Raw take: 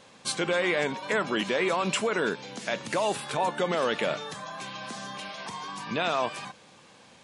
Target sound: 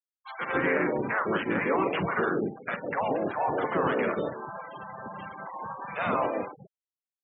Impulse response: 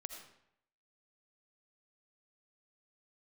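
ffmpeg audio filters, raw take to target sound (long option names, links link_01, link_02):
-filter_complex "[0:a]lowshelf=frequency=200:gain=-8.5,asplit=2[link_01][link_02];[link_02]adelay=47,volume=-9.5dB[link_03];[link_01][link_03]amix=inputs=2:normalize=0,acrossover=split=220|1200|2400[link_04][link_05][link_06][link_07];[link_07]acompressor=threshold=-53dB:ratio=12[link_08];[link_04][link_05][link_06][link_08]amix=inputs=4:normalize=0,asplit=4[link_09][link_10][link_11][link_12];[link_10]asetrate=22050,aresample=44100,atempo=2,volume=-9dB[link_13];[link_11]asetrate=33038,aresample=44100,atempo=1.33484,volume=-8dB[link_14];[link_12]asetrate=37084,aresample=44100,atempo=1.18921,volume=-2dB[link_15];[link_09][link_13][link_14][link_15]amix=inputs=4:normalize=0,acrossover=split=610[link_16][link_17];[link_16]adelay=150[link_18];[link_18][link_17]amix=inputs=2:normalize=0,afftfilt=real='re*gte(hypot(re,im),0.0224)':imag='im*gte(hypot(re,im),0.0224)':win_size=1024:overlap=0.75"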